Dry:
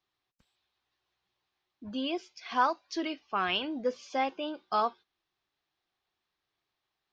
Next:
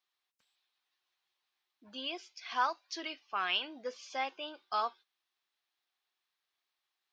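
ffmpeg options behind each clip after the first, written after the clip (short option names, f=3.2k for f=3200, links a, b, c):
-af "highpass=f=1.4k:p=1"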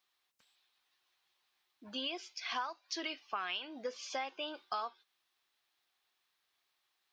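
-af "acompressor=threshold=-41dB:ratio=6,volume=5.5dB"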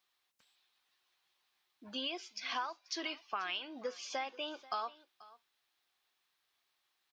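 -af "aecho=1:1:486:0.0944"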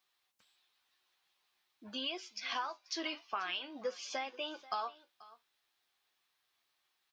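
-af "flanger=delay=7.7:depth=5.8:regen=55:speed=0.47:shape=triangular,volume=4.5dB"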